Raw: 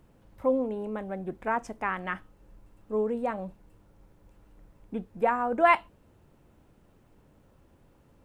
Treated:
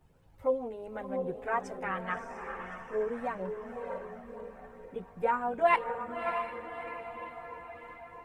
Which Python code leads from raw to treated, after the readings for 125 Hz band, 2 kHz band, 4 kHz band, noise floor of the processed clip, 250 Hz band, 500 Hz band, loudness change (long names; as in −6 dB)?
−3.5 dB, −3.0 dB, −2.5 dB, −56 dBFS, −7.5 dB, −2.5 dB, −5.0 dB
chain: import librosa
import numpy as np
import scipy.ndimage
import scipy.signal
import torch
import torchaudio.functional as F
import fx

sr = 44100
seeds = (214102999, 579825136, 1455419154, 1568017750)

y = fx.low_shelf(x, sr, hz=120.0, db=-7.0)
y = fx.echo_diffused(y, sr, ms=617, feedback_pct=50, wet_db=-6)
y = fx.chorus_voices(y, sr, voices=6, hz=0.53, base_ms=12, depth_ms=1.4, mix_pct=65)
y = y * librosa.db_to_amplitude(-1.0)